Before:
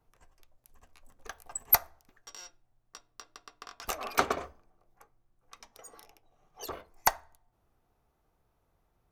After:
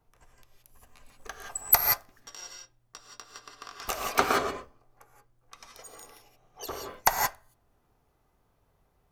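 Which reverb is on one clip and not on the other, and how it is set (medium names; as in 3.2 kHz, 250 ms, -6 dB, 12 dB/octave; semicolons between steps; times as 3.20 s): gated-style reverb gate 200 ms rising, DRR 1 dB; trim +2 dB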